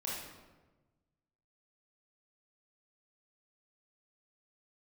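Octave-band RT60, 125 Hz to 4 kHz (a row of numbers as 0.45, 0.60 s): 1.8, 1.5, 1.3, 1.1, 0.95, 0.75 s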